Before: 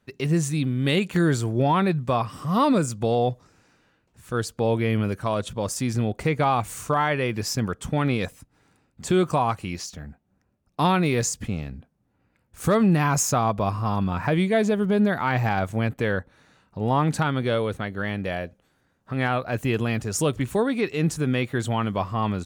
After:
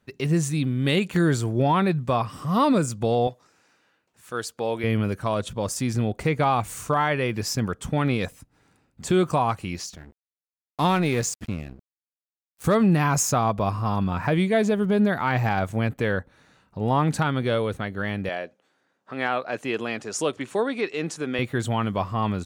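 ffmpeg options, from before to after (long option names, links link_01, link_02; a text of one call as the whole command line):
ffmpeg -i in.wav -filter_complex "[0:a]asettb=1/sr,asplit=3[link_01][link_02][link_03];[link_01]atrim=end=3.274[link_04];[link_02]atrim=start=3.27:end=4.84,asetpts=PTS-STARTPTS,afade=type=in:duration=0.004:curve=qsin,afade=type=out:start_time=1.566:duration=0.004:curve=qsin,highpass=frequency=530:poles=1[link_05];[link_03]atrim=start=4.836[link_06];[link_04][link_05]acrossfade=duration=0.004:curve1=hsin:curve2=qsin[link_07];[link_07][link_06]acrossfade=duration=0.004:curve1=qsin:curve2=hsin,asplit=3[link_08][link_09][link_10];[link_08]afade=type=out:start_time=9.95:duration=0.02[link_11];[link_09]aeval=exprs='sgn(val(0))*max(abs(val(0))-0.0119,0)':channel_layout=same,afade=type=in:start_time=9.95:duration=0.02,afade=type=out:start_time=12.64:duration=0.02[link_12];[link_10]afade=type=in:start_time=12.64:duration=0.02[link_13];[link_11][link_12][link_13]amix=inputs=3:normalize=0,asettb=1/sr,asplit=3[link_14][link_15][link_16];[link_14]atrim=end=18.294[link_17];[link_15]atrim=start=18.29:end=21.39,asetpts=PTS-STARTPTS,afade=type=in:duration=0.004:curve=qsin,afade=type=out:start_time=3.096:duration=0.004:curve=qsin,highpass=310,lowpass=7600[link_18];[link_16]atrim=start=21.386[link_19];[link_17][link_18]acrossfade=duration=0.004:curve1=hsin:curve2=qsin[link_20];[link_20][link_19]acrossfade=duration=0.004:curve1=qsin:curve2=hsin" out.wav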